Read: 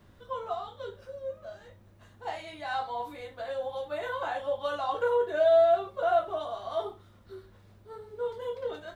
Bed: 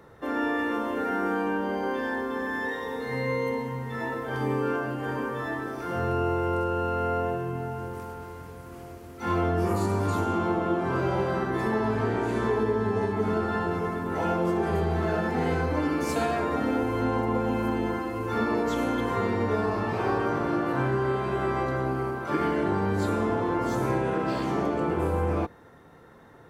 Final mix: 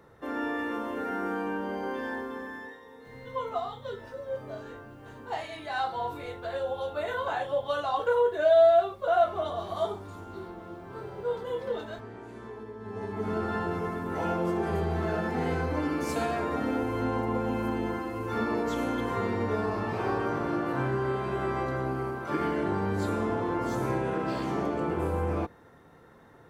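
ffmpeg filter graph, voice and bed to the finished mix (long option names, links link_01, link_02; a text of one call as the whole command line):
ffmpeg -i stem1.wav -i stem2.wav -filter_complex "[0:a]adelay=3050,volume=2dB[link_01];[1:a]volume=9.5dB,afade=type=out:start_time=2.14:duration=0.66:silence=0.237137,afade=type=in:start_time=12.79:duration=0.66:silence=0.199526[link_02];[link_01][link_02]amix=inputs=2:normalize=0" out.wav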